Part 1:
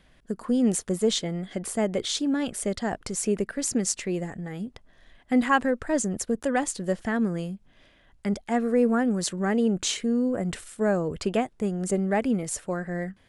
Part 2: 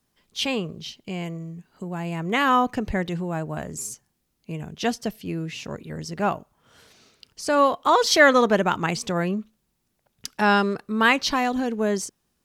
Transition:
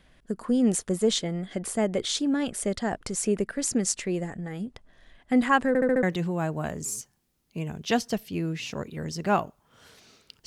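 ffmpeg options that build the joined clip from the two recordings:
ffmpeg -i cue0.wav -i cue1.wav -filter_complex "[0:a]apad=whole_dur=10.46,atrim=end=10.46,asplit=5[link_01][link_02][link_03][link_04][link_05];[link_01]atrim=end=5.752[link_06];[link_02]atrim=start=5.678:end=5.752[link_07];[link_03]atrim=start=5.678:end=5.752[link_08];[link_04]atrim=start=5.678:end=5.752[link_09];[link_05]atrim=start=5.678:end=5.752[link_10];[1:a]atrim=start=2.958:end=7.39[link_11];[link_06][link_07]acrossfade=duration=0.004:curve1=hsin:curve2=hsin[link_12];[link_12][link_08]acrossfade=duration=0.004:curve1=hsin:curve2=hsin[link_13];[link_13][link_09]acrossfade=duration=0.004:curve1=hsin:curve2=hsin[link_14];[link_14][link_10]acrossfade=duration=0.004:curve1=hsin:curve2=hsin[link_15];[link_15][link_11]acrossfade=duration=0.004:curve1=hsin:curve2=hsin" out.wav

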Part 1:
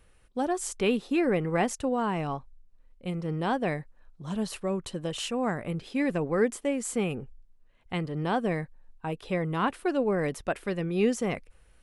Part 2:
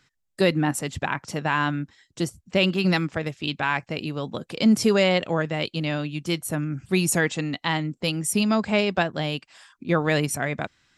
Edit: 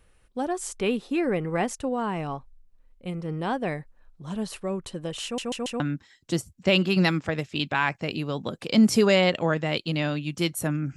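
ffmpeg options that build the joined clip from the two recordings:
ffmpeg -i cue0.wav -i cue1.wav -filter_complex "[0:a]apad=whole_dur=10.96,atrim=end=10.96,asplit=4[link_01][link_02][link_03][link_04];[link_01]atrim=end=5.382[link_05];[link_02]atrim=start=5.238:end=5.382[link_06];[link_03]atrim=start=5.238:end=5.382[link_07];[link_04]atrim=start=5.238:end=5.382[link_08];[1:a]atrim=start=1.678:end=6.84[link_09];[link_05][link_06]acrossfade=duration=0.004:curve1=hsin:curve2=hsin[link_10];[link_10][link_07]acrossfade=duration=0.004:curve1=hsin:curve2=hsin[link_11];[link_11][link_08]acrossfade=duration=0.004:curve1=hsin:curve2=hsin[link_12];[link_12][link_09]acrossfade=duration=0.004:curve1=hsin:curve2=hsin" out.wav

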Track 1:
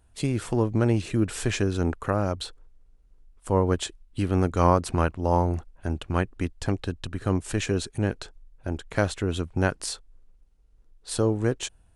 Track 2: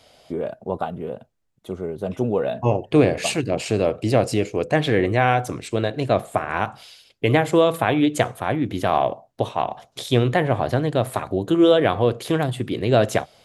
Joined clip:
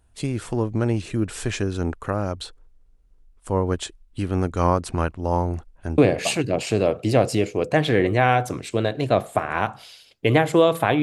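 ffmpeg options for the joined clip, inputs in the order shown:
ffmpeg -i cue0.wav -i cue1.wav -filter_complex "[0:a]apad=whole_dur=11.02,atrim=end=11.02,atrim=end=5.982[link_01];[1:a]atrim=start=2.968:end=8.01[link_02];[link_01][link_02]acrossfade=duration=0.004:curve1=hsin:curve2=hsin" out.wav

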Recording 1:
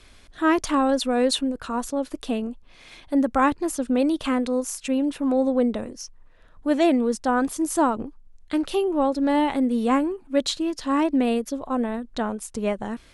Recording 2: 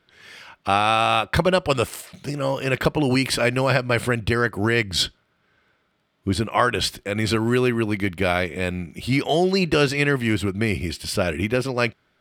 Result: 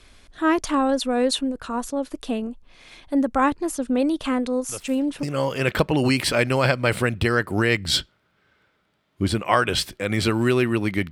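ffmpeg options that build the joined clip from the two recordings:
ffmpeg -i cue0.wav -i cue1.wav -filter_complex "[1:a]asplit=2[link_01][link_02];[0:a]apad=whole_dur=11.11,atrim=end=11.11,atrim=end=5.232[link_03];[link_02]atrim=start=2.288:end=8.17[link_04];[link_01]atrim=start=1.75:end=2.29,asetpts=PTS-STARTPTS,volume=-15dB,afade=type=in:duration=0.004:curve=hsin,afade=type=out:start_time=0.536:duration=0.004:curve=hsin,adelay=206829S[link_05];[link_03][link_04]acrossfade=duration=0.004:curve1=hsin:curve2=hsin[link_06];[link_06][link_05]amix=inputs=2:normalize=0" out.wav

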